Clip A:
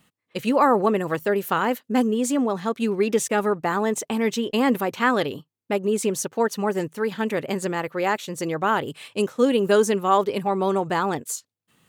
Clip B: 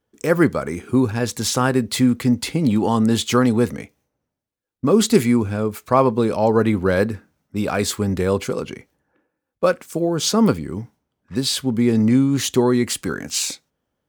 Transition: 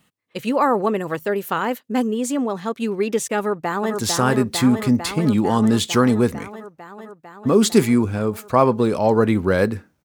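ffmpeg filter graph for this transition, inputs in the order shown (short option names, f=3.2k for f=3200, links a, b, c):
-filter_complex "[0:a]apad=whole_dur=10.04,atrim=end=10.04,atrim=end=3.962[a];[1:a]atrim=start=1.338:end=7.42[b];[a][b]acrossfade=d=0.004:c1=hsin:c2=hsin,asplit=2[c][d];[d]afade=t=in:st=3.38:d=0.01,afade=t=out:st=3.96:d=0.01,aecho=0:1:450|900|1350|1800|2250|2700|3150|3600|4050|4500|4950|5400:0.630957|0.504766|0.403813|0.32305|0.25844|0.206752|0.165402|0.132321|0.105857|0.0846857|0.0677485|0.0541988[e];[c][e]amix=inputs=2:normalize=0"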